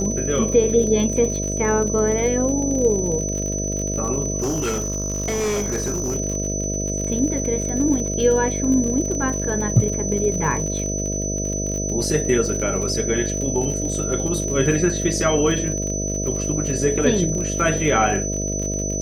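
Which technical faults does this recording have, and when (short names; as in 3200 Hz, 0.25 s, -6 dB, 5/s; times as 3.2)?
buzz 50 Hz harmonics 13 -26 dBFS
crackle 50/s -26 dBFS
tone 6000 Hz -26 dBFS
4.4–6.17 clipped -19 dBFS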